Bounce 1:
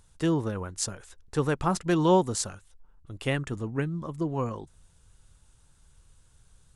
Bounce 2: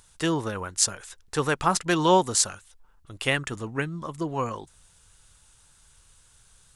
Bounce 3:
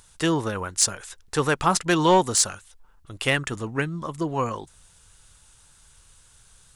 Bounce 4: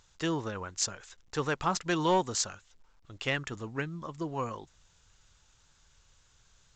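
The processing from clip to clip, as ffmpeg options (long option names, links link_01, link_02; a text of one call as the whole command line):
ffmpeg -i in.wav -af "tiltshelf=frequency=650:gain=-6,volume=3dB" out.wav
ffmpeg -i in.wav -af "aeval=exprs='0.668*sin(PI/2*1.78*val(0)/0.668)':channel_layout=same,volume=-6dB" out.wav
ffmpeg -i in.wav -af "volume=-8.5dB" -ar 16000 -c:a pcm_alaw out.wav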